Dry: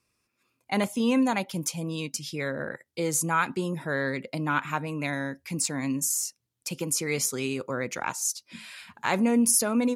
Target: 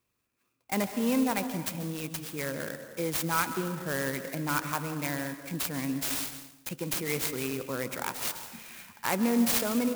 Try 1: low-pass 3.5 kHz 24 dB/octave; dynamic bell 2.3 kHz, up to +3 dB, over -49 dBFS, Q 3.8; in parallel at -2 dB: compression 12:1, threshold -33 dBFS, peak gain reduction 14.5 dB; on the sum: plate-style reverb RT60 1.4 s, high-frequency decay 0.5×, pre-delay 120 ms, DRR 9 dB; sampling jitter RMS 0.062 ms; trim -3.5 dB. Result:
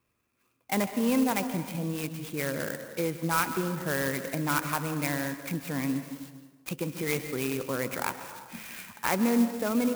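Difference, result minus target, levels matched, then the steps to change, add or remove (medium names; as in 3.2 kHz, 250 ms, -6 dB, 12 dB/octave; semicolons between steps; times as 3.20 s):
compression: peak gain reduction +14.5 dB; 4 kHz band -3.5 dB
remove: low-pass 3.5 kHz 24 dB/octave; remove: compression 12:1, threshold -33 dBFS, peak gain reduction 14.5 dB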